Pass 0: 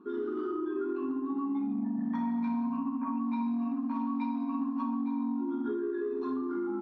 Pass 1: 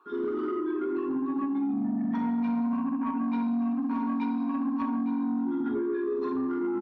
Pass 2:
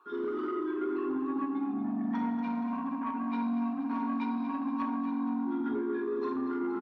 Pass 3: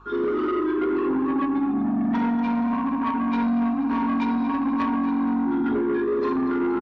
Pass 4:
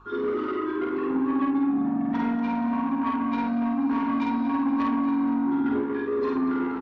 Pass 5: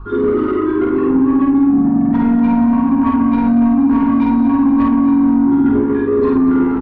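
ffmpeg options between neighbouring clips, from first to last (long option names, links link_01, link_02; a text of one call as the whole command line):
ffmpeg -i in.wav -filter_complex "[0:a]acrossover=split=600[link_01][link_02];[link_01]adelay=60[link_03];[link_03][link_02]amix=inputs=2:normalize=0,asoftclip=type=tanh:threshold=-27.5dB,volume=5.5dB" out.wav
ffmpeg -i in.wav -af "lowshelf=frequency=330:gain=-7.5,aecho=1:1:236|472|708|944|1180|1416|1652:0.282|0.166|0.0981|0.0579|0.0342|0.0201|0.0119" out.wav
ffmpeg -i in.wav -af "aresample=16000,aeval=exprs='0.0794*sin(PI/2*1.58*val(0)/0.0794)':channel_layout=same,aresample=44100,aeval=exprs='val(0)+0.002*(sin(2*PI*50*n/s)+sin(2*PI*2*50*n/s)/2+sin(2*PI*3*50*n/s)/3+sin(2*PI*4*50*n/s)/4+sin(2*PI*5*50*n/s)/5)':channel_layout=same,volume=3dB" out.wav
ffmpeg -i in.wav -filter_complex "[0:a]areverse,acompressor=mode=upward:threshold=-26dB:ratio=2.5,areverse,asplit=2[link_01][link_02];[link_02]adelay=50,volume=-3dB[link_03];[link_01][link_03]amix=inputs=2:normalize=0,volume=-4dB" out.wav
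ffmpeg -i in.wav -af "aemphasis=mode=reproduction:type=riaa,alimiter=limit=-14dB:level=0:latency=1:release=84,volume=8dB" out.wav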